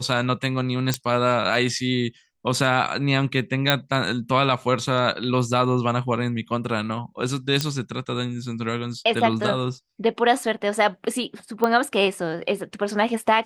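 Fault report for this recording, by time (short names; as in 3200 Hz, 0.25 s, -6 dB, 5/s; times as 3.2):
0.94 pop -6 dBFS
3.7 pop -3 dBFS
7.61 pop -8 dBFS
11.64 pop -9 dBFS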